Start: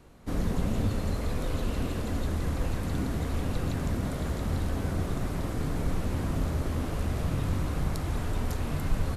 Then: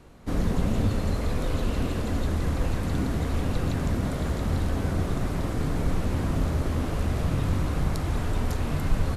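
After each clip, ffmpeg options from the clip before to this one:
ffmpeg -i in.wav -af "highshelf=frequency=11000:gain=-6,volume=3.5dB" out.wav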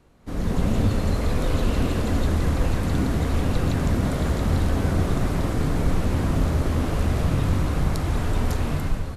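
ffmpeg -i in.wav -af "dynaudnorm=framelen=170:gausssize=5:maxgain=12dB,volume=-6.5dB" out.wav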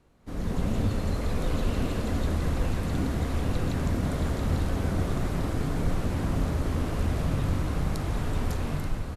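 ffmpeg -i in.wav -af "aecho=1:1:882:0.316,volume=-5.5dB" out.wav

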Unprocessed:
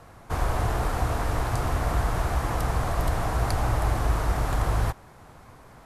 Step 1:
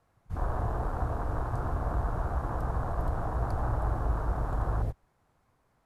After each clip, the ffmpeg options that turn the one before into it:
ffmpeg -i in.wav -af "afwtdn=0.0398,volume=-5dB" out.wav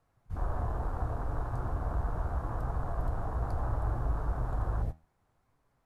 ffmpeg -i in.wav -af "lowshelf=frequency=68:gain=6,flanger=delay=6.9:depth=5.8:regen=75:speed=0.71:shape=sinusoidal" out.wav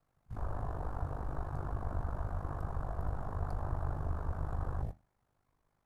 ffmpeg -i in.wav -af "aeval=exprs='val(0)*sin(2*PI*25*n/s)':channel_layout=same,volume=-1.5dB" out.wav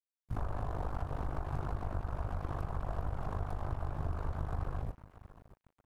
ffmpeg -i in.wav -af "acompressor=threshold=-39dB:ratio=12,aecho=1:1:628|1256|1884|2512:0.2|0.0878|0.0386|0.017,aeval=exprs='sgn(val(0))*max(abs(val(0))-0.00126,0)':channel_layout=same,volume=9dB" out.wav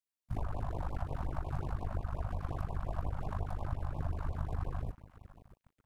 ffmpeg -i in.wav -filter_complex "[0:a]asplit=2[link_01][link_02];[link_02]acrusher=bits=3:mix=0:aa=0.5,volume=-11dB[link_03];[link_01][link_03]amix=inputs=2:normalize=0,afftfilt=real='re*(1-between(b*sr/1024,340*pow(1700/340,0.5+0.5*sin(2*PI*5.6*pts/sr))/1.41,340*pow(1700/340,0.5+0.5*sin(2*PI*5.6*pts/sr))*1.41))':imag='im*(1-between(b*sr/1024,340*pow(1700/340,0.5+0.5*sin(2*PI*5.6*pts/sr))/1.41,340*pow(1700/340,0.5+0.5*sin(2*PI*5.6*pts/sr))*1.41))':win_size=1024:overlap=0.75" out.wav

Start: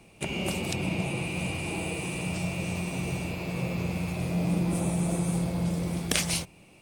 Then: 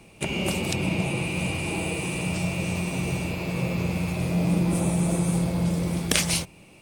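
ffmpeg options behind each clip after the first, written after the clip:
ffmpeg -i in.wav -af "bandreject=frequency=720:width=20,volume=4dB" out.wav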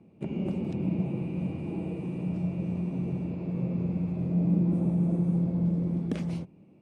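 ffmpeg -i in.wav -af "bandpass=frequency=220:width_type=q:width=1.3:csg=0" out.wav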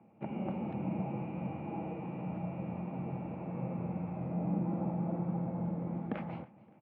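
ffmpeg -i in.wav -af "highpass=150,equalizer=frequency=170:width_type=q:width=4:gain=-8,equalizer=frequency=270:width_type=q:width=4:gain=-6,equalizer=frequency=390:width_type=q:width=4:gain=-10,equalizer=frequency=820:width_type=q:width=4:gain=9,equalizer=frequency=1300:width_type=q:width=4:gain=4,lowpass=frequency=2400:width=0.5412,lowpass=frequency=2400:width=1.3066,aecho=1:1:284|568|852:0.0841|0.0328|0.0128" out.wav

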